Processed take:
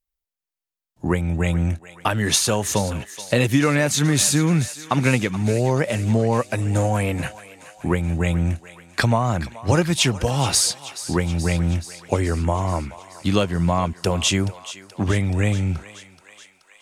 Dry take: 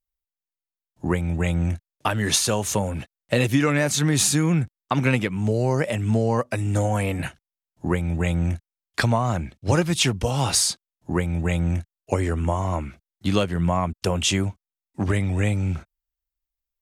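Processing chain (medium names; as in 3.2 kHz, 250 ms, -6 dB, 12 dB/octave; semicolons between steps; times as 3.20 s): thinning echo 428 ms, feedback 70%, high-pass 770 Hz, level -14 dB; trim +2 dB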